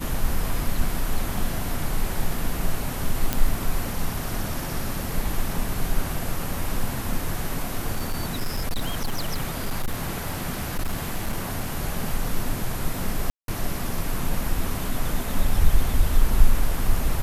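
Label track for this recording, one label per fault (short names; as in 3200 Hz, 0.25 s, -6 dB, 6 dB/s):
3.330000	3.330000	pop -6 dBFS
7.950000	11.700000	clipped -20.5 dBFS
13.300000	13.480000	gap 0.182 s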